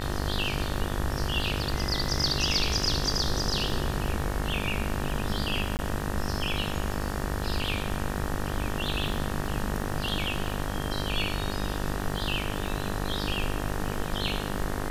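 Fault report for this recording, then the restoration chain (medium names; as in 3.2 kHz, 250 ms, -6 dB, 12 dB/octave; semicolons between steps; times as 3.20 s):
buzz 50 Hz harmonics 38 -33 dBFS
crackle 35 per s -36 dBFS
5.77–5.79 s: dropout 19 ms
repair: de-click; de-hum 50 Hz, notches 38; interpolate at 5.77 s, 19 ms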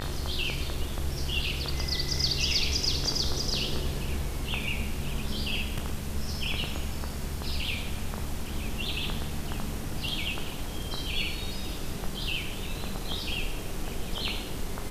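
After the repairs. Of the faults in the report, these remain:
nothing left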